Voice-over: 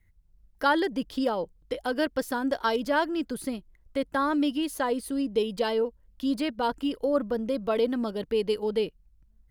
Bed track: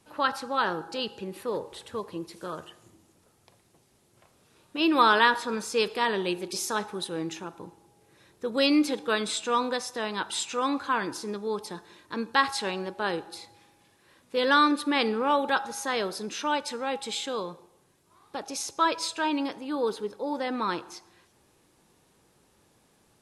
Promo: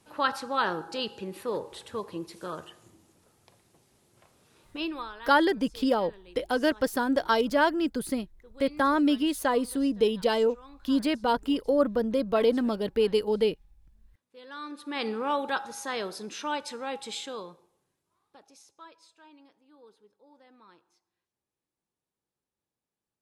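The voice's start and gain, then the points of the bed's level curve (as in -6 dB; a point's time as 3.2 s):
4.65 s, +2.0 dB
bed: 4.7 s -0.5 dB
5.13 s -23.5 dB
14.48 s -23.5 dB
15.08 s -4 dB
17.18 s -4 dB
19.01 s -27.5 dB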